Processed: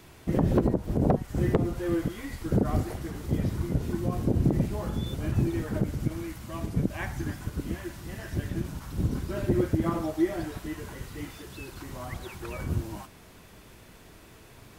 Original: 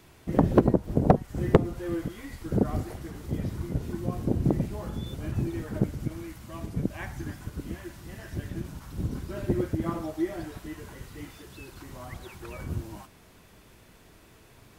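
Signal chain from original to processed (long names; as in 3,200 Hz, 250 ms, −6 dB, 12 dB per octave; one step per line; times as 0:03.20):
brickwall limiter −17 dBFS, peak gain reduction 10.5 dB
level +3.5 dB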